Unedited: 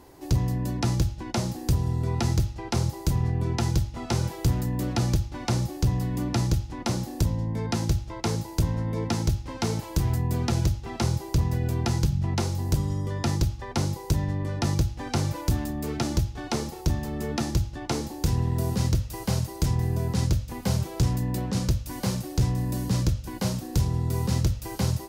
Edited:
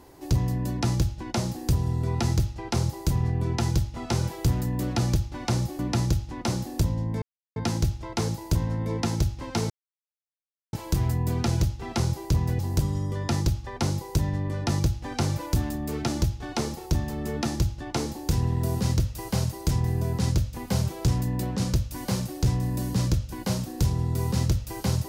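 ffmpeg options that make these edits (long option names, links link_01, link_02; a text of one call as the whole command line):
ffmpeg -i in.wav -filter_complex "[0:a]asplit=5[link_01][link_02][link_03][link_04][link_05];[link_01]atrim=end=5.792[link_06];[link_02]atrim=start=6.198:end=7.63,asetpts=PTS-STARTPTS,afade=type=out:start_time=1.428:duration=0.004:curve=hsin,apad=pad_dur=0.34[link_07];[link_03]atrim=start=7.63:end=9.77,asetpts=PTS-STARTPTS,afade=type=in:duration=0.004:curve=hsin,afade=type=out:start_time=2.136:duration=0.004:curve=hsin,apad=pad_dur=1.03[link_08];[link_04]atrim=start=9.77:end=11.632,asetpts=PTS-STARTPTS,afade=type=in:duration=0.004:curve=hsin[link_09];[link_05]atrim=start=12.538[link_10];[link_07][link_08][link_09]concat=n=3:v=0:a=1[link_11];[link_06][link_11]acrossfade=duration=0.004:curve1=hsin:curve2=hsin[link_12];[link_12][link_10]acrossfade=duration=0.004:curve1=hsin:curve2=hsin" out.wav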